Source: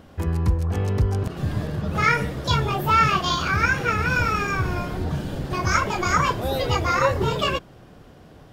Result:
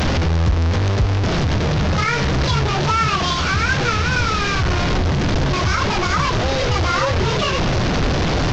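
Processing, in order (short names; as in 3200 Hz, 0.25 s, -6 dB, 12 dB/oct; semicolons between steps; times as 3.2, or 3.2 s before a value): delta modulation 32 kbps, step -16.5 dBFS; low shelf 110 Hz +7.5 dB; limiter -11.5 dBFS, peak gain reduction 7 dB; gain +2.5 dB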